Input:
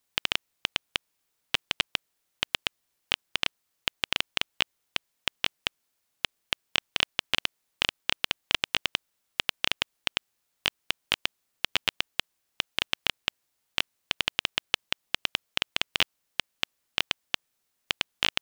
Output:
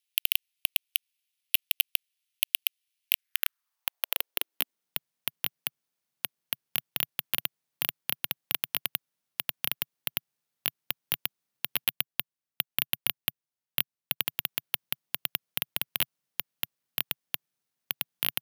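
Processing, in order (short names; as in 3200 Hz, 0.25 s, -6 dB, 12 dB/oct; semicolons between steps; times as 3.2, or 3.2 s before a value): 11.84–14.26 transient shaper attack +4 dB, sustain -9 dB; high-pass sweep 2700 Hz -> 140 Hz, 3.05–5.04; hard clip -4.5 dBFS, distortion -17 dB; careless resampling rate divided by 3×, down filtered, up zero stuff; gain -7.5 dB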